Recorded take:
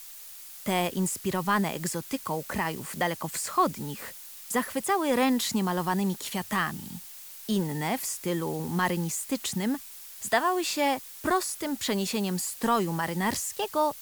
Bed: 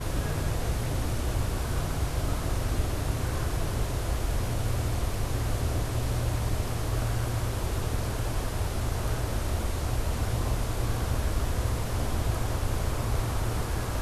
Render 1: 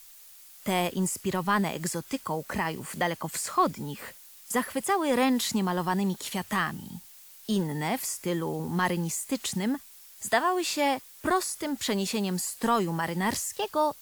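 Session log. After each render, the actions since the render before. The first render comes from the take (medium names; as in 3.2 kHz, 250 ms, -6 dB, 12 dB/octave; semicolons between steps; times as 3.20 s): noise print and reduce 6 dB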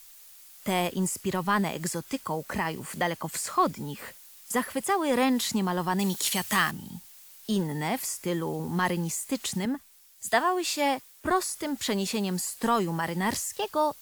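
5.99–6.71 s: treble shelf 2.1 kHz +10.5 dB; 9.65–11.48 s: three bands expanded up and down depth 40%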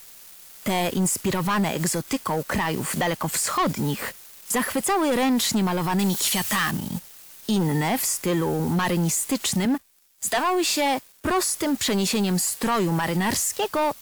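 waveshaping leveller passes 3; peak limiter -17 dBFS, peak gain reduction 6.5 dB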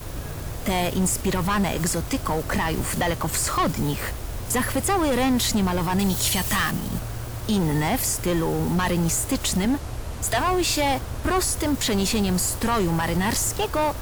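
add bed -3.5 dB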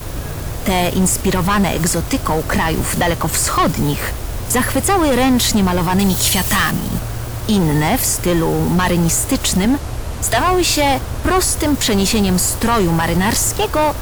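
trim +7.5 dB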